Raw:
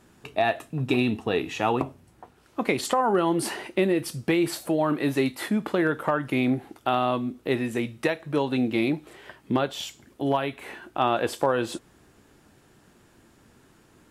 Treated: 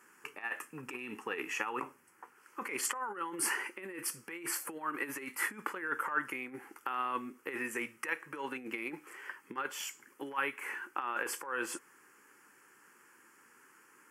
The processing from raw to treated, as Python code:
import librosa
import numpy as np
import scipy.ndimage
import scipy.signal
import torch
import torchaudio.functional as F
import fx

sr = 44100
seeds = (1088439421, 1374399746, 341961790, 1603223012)

y = fx.over_compress(x, sr, threshold_db=-26.0, ratio=-0.5)
y = scipy.signal.sosfilt(scipy.signal.cheby1(2, 1.0, 650.0, 'highpass', fs=sr, output='sos'), y)
y = fx.fixed_phaser(y, sr, hz=1600.0, stages=4)